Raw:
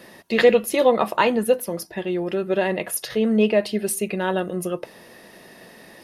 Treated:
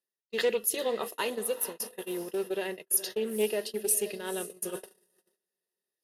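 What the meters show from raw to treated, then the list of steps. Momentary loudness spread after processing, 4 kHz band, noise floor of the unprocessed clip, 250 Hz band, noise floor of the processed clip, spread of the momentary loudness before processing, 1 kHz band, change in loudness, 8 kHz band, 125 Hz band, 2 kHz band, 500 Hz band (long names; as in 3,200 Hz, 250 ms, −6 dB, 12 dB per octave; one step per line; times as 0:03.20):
9 LU, −6.5 dB, −47 dBFS, −15.5 dB, below −85 dBFS, 11 LU, −15.0 dB, −9.5 dB, +1.0 dB, −18.5 dB, −11.5 dB, −11.5 dB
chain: Butterworth band-reject 2,300 Hz, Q 5.6
first-order pre-emphasis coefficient 0.9
feedback delay with all-pass diffusion 481 ms, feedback 42%, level −13 dB
reversed playback
upward compression, threshold −33 dBFS
reversed playback
parametric band 410 Hz +12.5 dB 0.43 octaves
noise gate −35 dBFS, range −47 dB
highs frequency-modulated by the lows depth 0.12 ms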